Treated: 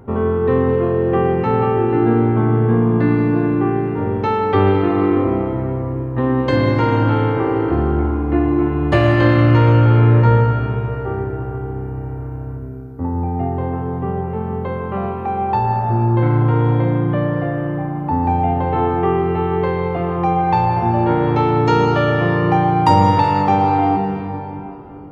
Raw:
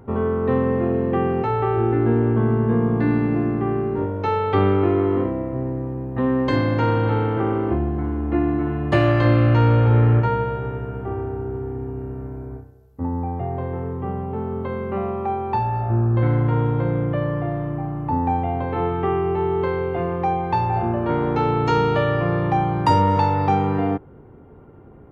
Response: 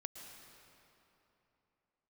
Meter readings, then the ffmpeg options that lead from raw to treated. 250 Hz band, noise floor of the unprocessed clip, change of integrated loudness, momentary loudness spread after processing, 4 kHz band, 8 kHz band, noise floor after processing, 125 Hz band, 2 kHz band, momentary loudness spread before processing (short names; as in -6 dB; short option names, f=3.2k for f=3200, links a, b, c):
+4.5 dB, -45 dBFS, +4.5 dB, 11 LU, +4.5 dB, n/a, -28 dBFS, +4.0 dB, +5.0 dB, 11 LU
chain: -filter_complex "[1:a]atrim=start_sample=2205[a];[0:a][a]afir=irnorm=-1:irlink=0,volume=8dB"